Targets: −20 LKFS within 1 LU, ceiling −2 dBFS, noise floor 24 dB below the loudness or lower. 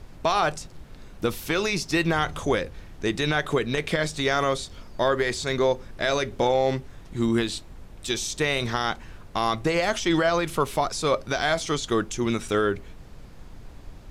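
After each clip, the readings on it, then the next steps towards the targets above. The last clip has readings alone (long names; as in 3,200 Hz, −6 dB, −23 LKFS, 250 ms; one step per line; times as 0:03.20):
background noise floor −45 dBFS; target noise floor −50 dBFS; integrated loudness −25.5 LKFS; sample peak −11.0 dBFS; target loudness −20.0 LKFS
→ noise reduction from a noise print 6 dB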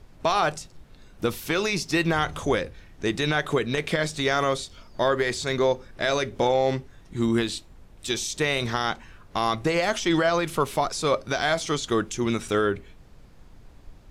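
background noise floor −50 dBFS; integrated loudness −25.5 LKFS; sample peak −11.0 dBFS; target loudness −20.0 LKFS
→ level +5.5 dB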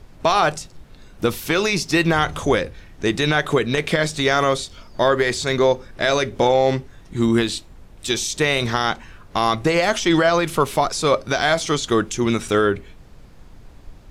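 integrated loudness −20.0 LKFS; sample peak −5.5 dBFS; background noise floor −45 dBFS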